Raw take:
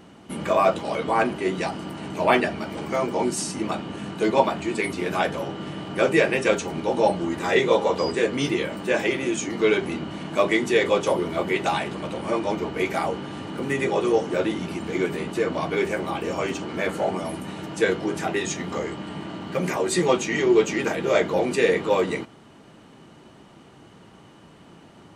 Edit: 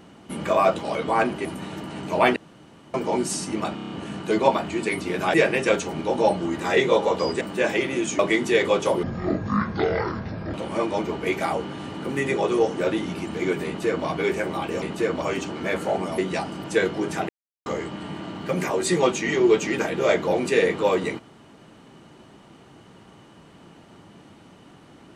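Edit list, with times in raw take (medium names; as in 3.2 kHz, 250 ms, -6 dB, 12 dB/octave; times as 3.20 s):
1.45–1.91 s: swap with 17.31–17.70 s
2.43–3.01 s: room tone
3.82 s: stutter 0.03 s, 6 plays
5.26–6.13 s: delete
8.20–8.71 s: delete
9.49–10.40 s: delete
11.24–12.07 s: speed 55%
15.19–15.59 s: copy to 16.35 s
18.35–18.72 s: mute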